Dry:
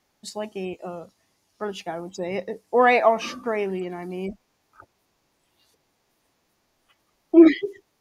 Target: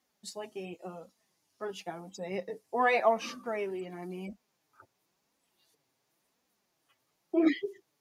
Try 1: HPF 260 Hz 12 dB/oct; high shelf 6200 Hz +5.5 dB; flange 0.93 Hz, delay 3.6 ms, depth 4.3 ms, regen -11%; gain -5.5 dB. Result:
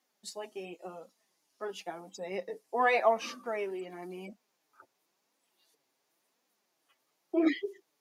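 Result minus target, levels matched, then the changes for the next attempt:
125 Hz band -6.5 dB
change: HPF 82 Hz 12 dB/oct

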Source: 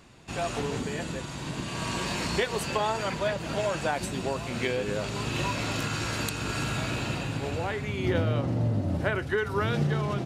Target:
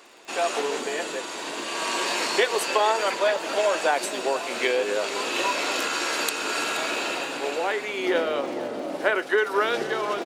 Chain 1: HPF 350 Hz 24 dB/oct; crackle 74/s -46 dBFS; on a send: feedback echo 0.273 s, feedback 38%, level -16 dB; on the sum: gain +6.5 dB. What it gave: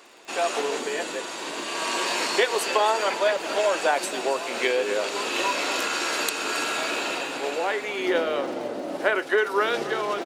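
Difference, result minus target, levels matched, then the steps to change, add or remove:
echo 0.202 s early
change: feedback echo 0.475 s, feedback 38%, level -16 dB

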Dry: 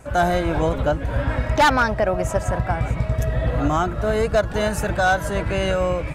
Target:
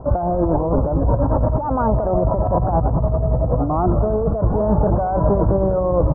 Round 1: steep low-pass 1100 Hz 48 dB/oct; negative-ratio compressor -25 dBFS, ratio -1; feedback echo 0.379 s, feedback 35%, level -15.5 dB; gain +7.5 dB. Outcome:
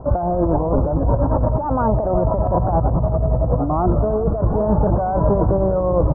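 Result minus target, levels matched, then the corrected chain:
echo 0.171 s late
steep low-pass 1100 Hz 48 dB/oct; negative-ratio compressor -25 dBFS, ratio -1; feedback echo 0.208 s, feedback 35%, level -15.5 dB; gain +7.5 dB

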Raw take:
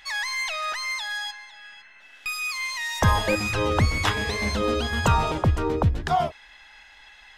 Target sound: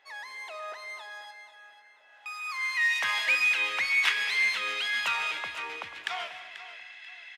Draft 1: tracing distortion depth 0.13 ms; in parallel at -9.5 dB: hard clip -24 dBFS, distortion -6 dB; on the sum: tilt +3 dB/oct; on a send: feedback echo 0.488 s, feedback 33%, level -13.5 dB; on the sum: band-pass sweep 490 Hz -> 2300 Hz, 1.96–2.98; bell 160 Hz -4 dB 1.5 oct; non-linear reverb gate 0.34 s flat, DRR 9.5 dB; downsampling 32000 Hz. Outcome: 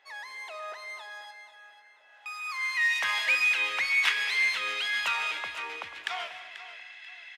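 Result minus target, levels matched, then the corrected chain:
125 Hz band -3.0 dB
tracing distortion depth 0.13 ms; in parallel at -9.5 dB: hard clip -24 dBFS, distortion -6 dB; on the sum: tilt +3 dB/oct; on a send: feedback echo 0.488 s, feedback 33%, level -13.5 dB; on the sum: band-pass sweep 490 Hz -> 2300 Hz, 1.96–2.98; non-linear reverb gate 0.34 s flat, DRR 9.5 dB; downsampling 32000 Hz

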